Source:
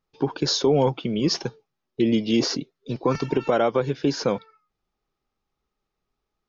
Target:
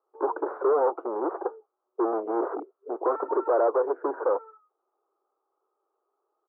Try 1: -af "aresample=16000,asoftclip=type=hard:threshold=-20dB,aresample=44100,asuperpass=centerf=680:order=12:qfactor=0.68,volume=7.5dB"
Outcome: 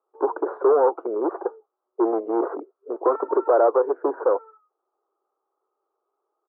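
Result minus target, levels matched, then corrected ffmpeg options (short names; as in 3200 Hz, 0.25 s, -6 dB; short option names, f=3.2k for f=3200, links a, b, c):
hard clip: distortion -4 dB
-af "aresample=16000,asoftclip=type=hard:threshold=-26.5dB,aresample=44100,asuperpass=centerf=680:order=12:qfactor=0.68,volume=7.5dB"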